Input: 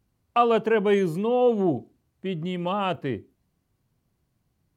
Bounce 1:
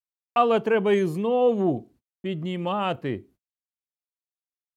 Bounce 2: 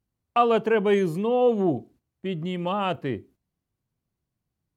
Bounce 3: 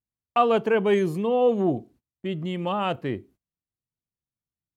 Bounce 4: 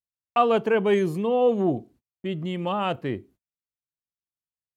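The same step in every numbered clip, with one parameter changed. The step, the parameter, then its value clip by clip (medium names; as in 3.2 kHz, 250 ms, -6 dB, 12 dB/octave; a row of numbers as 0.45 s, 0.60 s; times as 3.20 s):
gate, range: -56 dB, -10 dB, -25 dB, -38 dB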